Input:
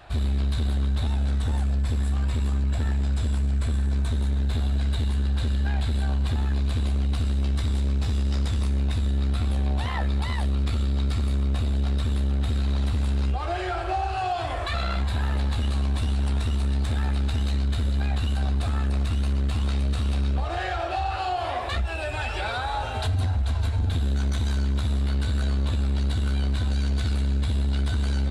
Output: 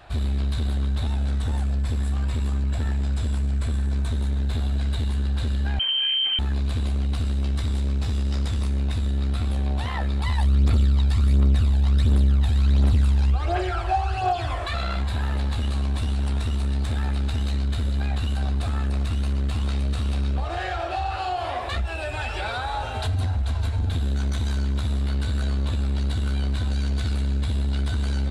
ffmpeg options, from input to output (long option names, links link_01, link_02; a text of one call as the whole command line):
ffmpeg -i in.wav -filter_complex "[0:a]asettb=1/sr,asplit=3[link_01][link_02][link_03];[link_01]atrim=end=5.794[link_04];[link_02]atrim=start=5.79:end=6.39,asetpts=PTS-STARTPTS,afade=type=in:duration=0.004:curve=qsin,afade=type=out:start_time=0.596:duration=0.004:curve=qsin,lowpass=frequency=2700:width_type=q:width=0.5098,lowpass=frequency=2700:width_type=q:width=0.6013,lowpass=frequency=2700:width_type=q:width=0.9,lowpass=frequency=2700:width_type=q:width=2.563,afreqshift=-3200[link_05];[link_03]atrim=start=6.386[link_06];[link_04][link_05]acrossfade=duration=0.004:curve1=hsin:curve2=qsin[link_07];[link_07][link_06]acrossfade=duration=0.004:curve1=qsin:curve2=hsin,asplit=3[link_08][link_09][link_10];[link_08]afade=type=out:start_time=10.23:duration=0.02[link_11];[link_09]aphaser=in_gain=1:out_gain=1:delay=1.3:decay=0.53:speed=1.4:type=triangular,afade=type=in:start_time=10.23:duration=0.02,afade=type=out:start_time=14.56:duration=0.02[link_12];[link_10]afade=type=in:start_time=14.56:duration=0.02[link_13];[link_11][link_12][link_13]amix=inputs=3:normalize=0" out.wav